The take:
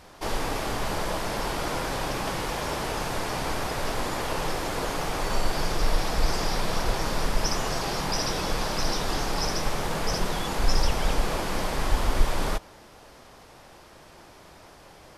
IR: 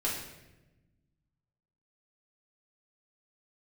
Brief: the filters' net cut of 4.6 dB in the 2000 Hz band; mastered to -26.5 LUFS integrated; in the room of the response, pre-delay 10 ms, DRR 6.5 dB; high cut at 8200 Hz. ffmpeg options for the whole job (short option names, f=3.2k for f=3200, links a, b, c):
-filter_complex "[0:a]lowpass=8.2k,equalizer=f=2k:t=o:g=-6,asplit=2[a][b];[1:a]atrim=start_sample=2205,adelay=10[c];[b][c]afir=irnorm=-1:irlink=0,volume=-12.5dB[d];[a][d]amix=inputs=2:normalize=0,volume=2.5dB"